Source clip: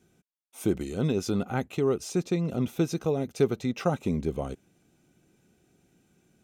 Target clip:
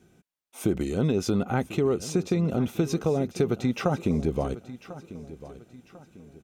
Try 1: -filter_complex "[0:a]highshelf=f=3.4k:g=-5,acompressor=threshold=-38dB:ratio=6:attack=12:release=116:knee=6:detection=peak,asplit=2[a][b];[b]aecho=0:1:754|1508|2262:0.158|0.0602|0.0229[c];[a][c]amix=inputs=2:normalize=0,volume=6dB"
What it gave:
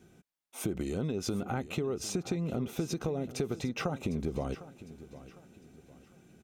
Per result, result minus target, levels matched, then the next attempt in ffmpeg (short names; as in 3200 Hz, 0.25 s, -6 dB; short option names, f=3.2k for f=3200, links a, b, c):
compressor: peak gain reduction +9.5 dB; echo 0.292 s early
-filter_complex "[0:a]highshelf=f=3.4k:g=-5,acompressor=threshold=-26.5dB:ratio=6:attack=12:release=116:knee=6:detection=peak,asplit=2[a][b];[b]aecho=0:1:754|1508|2262:0.158|0.0602|0.0229[c];[a][c]amix=inputs=2:normalize=0,volume=6dB"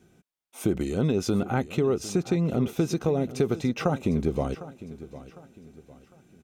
echo 0.292 s early
-filter_complex "[0:a]highshelf=f=3.4k:g=-5,acompressor=threshold=-26.5dB:ratio=6:attack=12:release=116:knee=6:detection=peak,asplit=2[a][b];[b]aecho=0:1:1046|2092|3138:0.158|0.0602|0.0229[c];[a][c]amix=inputs=2:normalize=0,volume=6dB"